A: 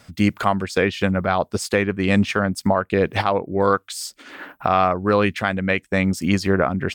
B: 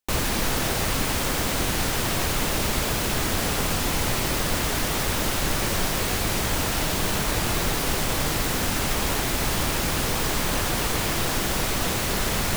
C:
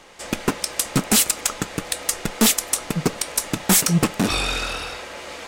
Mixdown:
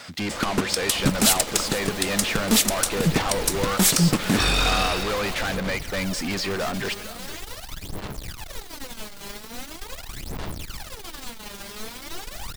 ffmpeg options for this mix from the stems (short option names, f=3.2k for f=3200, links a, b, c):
-filter_complex "[0:a]asoftclip=type=tanh:threshold=-11.5dB,asplit=2[a][b];[b]highpass=f=720:p=1,volume=28dB,asoftclip=type=tanh:threshold=-11.5dB[c];[a][c]amix=inputs=2:normalize=0,lowpass=f=6.4k:p=1,volume=-6dB,volume=-10dB,asplit=2[d][e];[e]volume=-15dB[f];[1:a]aphaser=in_gain=1:out_gain=1:delay=5:decay=0.8:speed=0.42:type=sinusoidal,aeval=exprs='(tanh(5.01*val(0)+0.7)-tanh(0.7))/5.01':c=same,adelay=900,volume=-14dB[g];[2:a]lowshelf=f=300:g=6.5,alimiter=limit=-14dB:level=0:latency=1:release=87,aeval=exprs='sgn(val(0))*max(abs(val(0))-0.00794,0)':c=same,adelay=100,volume=2.5dB,asplit=2[h][i];[i]volume=-18dB[j];[f][j]amix=inputs=2:normalize=0,aecho=0:1:460:1[k];[d][g][h][k]amix=inputs=4:normalize=0,equalizer=f=4.1k:w=1.5:g=3.5"